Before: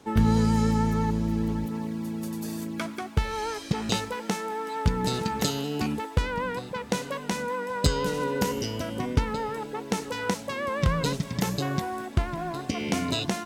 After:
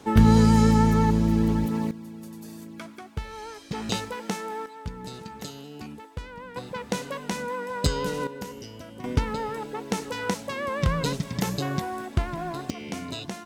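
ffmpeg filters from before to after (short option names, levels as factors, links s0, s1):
-af "asetnsamples=n=441:p=0,asendcmd='1.91 volume volume -8dB;3.72 volume volume -1.5dB;4.66 volume volume -11.5dB;6.56 volume volume -1dB;8.27 volume volume -10.5dB;9.04 volume volume 0dB;12.7 volume volume -7dB',volume=1.78"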